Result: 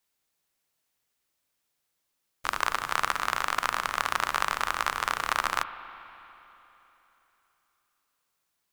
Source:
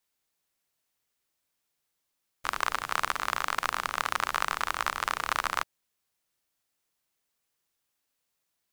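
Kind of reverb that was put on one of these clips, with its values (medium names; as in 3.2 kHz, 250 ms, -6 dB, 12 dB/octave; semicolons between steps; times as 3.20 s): spring tank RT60 3.4 s, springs 40/59 ms, chirp 70 ms, DRR 12 dB; trim +1.5 dB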